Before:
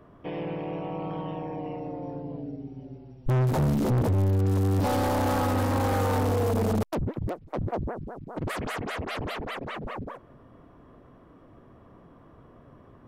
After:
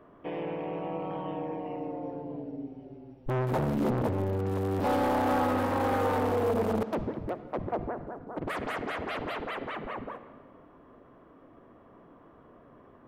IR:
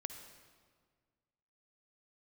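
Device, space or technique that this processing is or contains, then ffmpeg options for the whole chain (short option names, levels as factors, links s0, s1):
filtered reverb send: -filter_complex "[0:a]asplit=2[s0][s1];[s1]highpass=200,lowpass=3500[s2];[1:a]atrim=start_sample=2205[s3];[s2][s3]afir=irnorm=-1:irlink=0,volume=2[s4];[s0][s4]amix=inputs=2:normalize=0,volume=0.398"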